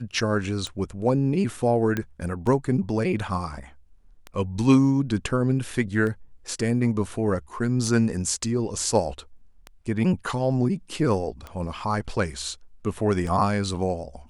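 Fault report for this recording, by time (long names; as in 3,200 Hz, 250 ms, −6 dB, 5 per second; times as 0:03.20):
scratch tick 33 1/3 rpm −20 dBFS
0:01.97: click −13 dBFS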